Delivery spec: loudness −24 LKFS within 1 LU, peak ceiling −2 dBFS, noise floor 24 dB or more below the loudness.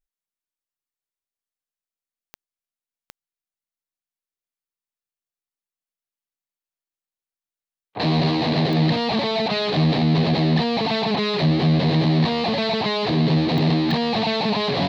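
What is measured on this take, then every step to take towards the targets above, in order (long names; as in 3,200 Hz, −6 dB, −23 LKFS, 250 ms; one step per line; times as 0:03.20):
number of clicks 5; integrated loudness −20.0 LKFS; sample peak −9.5 dBFS; target loudness −24.0 LKFS
→ click removal
level −4 dB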